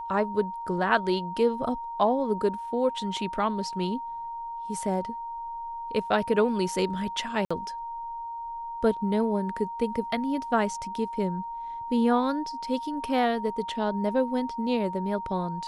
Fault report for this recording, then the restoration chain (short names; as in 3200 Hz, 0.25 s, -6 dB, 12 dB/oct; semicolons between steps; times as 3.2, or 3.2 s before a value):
tone 930 Hz -33 dBFS
7.45–7.5 gap 55 ms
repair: notch 930 Hz, Q 30; interpolate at 7.45, 55 ms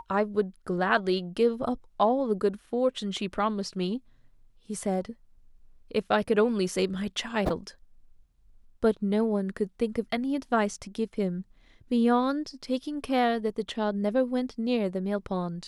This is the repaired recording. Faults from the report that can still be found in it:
none